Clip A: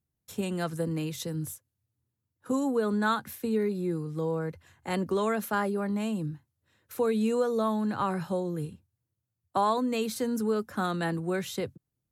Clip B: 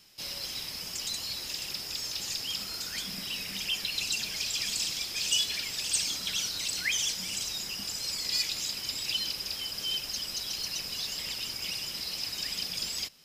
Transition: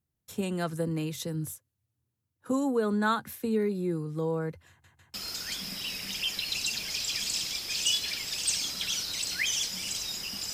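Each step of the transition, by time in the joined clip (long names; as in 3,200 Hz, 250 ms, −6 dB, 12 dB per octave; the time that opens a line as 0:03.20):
clip A
0:04.69: stutter in place 0.15 s, 3 plays
0:05.14: continue with clip B from 0:02.60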